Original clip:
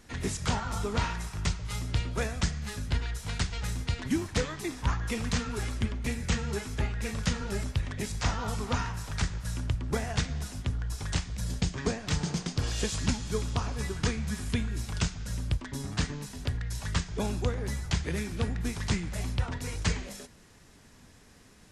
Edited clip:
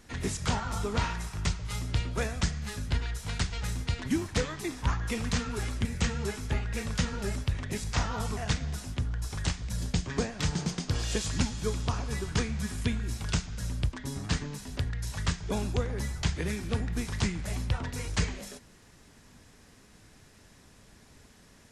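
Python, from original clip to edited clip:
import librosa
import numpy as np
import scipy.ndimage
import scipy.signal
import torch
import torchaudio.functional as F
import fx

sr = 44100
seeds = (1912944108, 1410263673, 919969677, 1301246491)

y = fx.edit(x, sr, fx.cut(start_s=5.85, length_s=0.28),
    fx.cut(start_s=8.65, length_s=1.4), tone=tone)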